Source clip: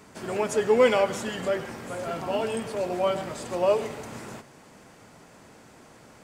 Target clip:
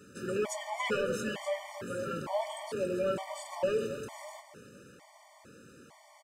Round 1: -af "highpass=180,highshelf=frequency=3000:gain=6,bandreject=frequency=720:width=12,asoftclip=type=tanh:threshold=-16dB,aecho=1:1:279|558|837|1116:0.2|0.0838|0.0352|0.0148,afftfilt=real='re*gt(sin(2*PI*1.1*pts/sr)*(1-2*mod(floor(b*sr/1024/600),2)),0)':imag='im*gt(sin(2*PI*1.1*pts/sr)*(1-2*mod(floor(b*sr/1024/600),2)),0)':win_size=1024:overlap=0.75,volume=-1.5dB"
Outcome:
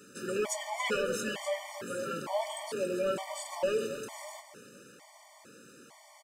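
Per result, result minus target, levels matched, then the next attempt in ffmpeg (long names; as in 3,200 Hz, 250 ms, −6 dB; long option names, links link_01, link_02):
8,000 Hz band +4.5 dB; 125 Hz band −4.5 dB
-af "highpass=180,bandreject=frequency=720:width=12,asoftclip=type=tanh:threshold=-16dB,aecho=1:1:279|558|837|1116:0.2|0.0838|0.0352|0.0148,afftfilt=real='re*gt(sin(2*PI*1.1*pts/sr)*(1-2*mod(floor(b*sr/1024/600),2)),0)':imag='im*gt(sin(2*PI*1.1*pts/sr)*(1-2*mod(floor(b*sr/1024/600),2)),0)':win_size=1024:overlap=0.75,volume=-1.5dB"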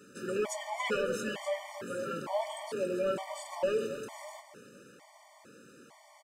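125 Hz band −4.0 dB
-af "highpass=73,bandreject=frequency=720:width=12,asoftclip=type=tanh:threshold=-16dB,aecho=1:1:279|558|837|1116:0.2|0.0838|0.0352|0.0148,afftfilt=real='re*gt(sin(2*PI*1.1*pts/sr)*(1-2*mod(floor(b*sr/1024/600),2)),0)':imag='im*gt(sin(2*PI*1.1*pts/sr)*(1-2*mod(floor(b*sr/1024/600),2)),0)':win_size=1024:overlap=0.75,volume=-1.5dB"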